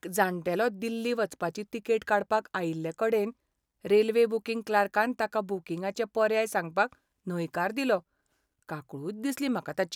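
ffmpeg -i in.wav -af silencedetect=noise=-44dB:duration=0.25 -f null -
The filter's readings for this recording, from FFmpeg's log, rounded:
silence_start: 3.31
silence_end: 3.85 | silence_duration: 0.54
silence_start: 6.93
silence_end: 7.27 | silence_duration: 0.34
silence_start: 8.00
silence_end: 8.69 | silence_duration: 0.69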